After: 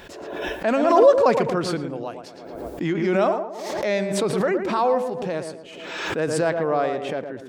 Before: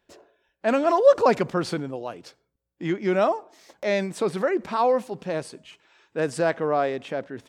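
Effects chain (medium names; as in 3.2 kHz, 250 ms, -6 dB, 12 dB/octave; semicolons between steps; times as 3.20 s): tape echo 114 ms, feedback 45%, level -5.5 dB, low-pass 1.2 kHz; swell ahead of each attack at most 38 dB/s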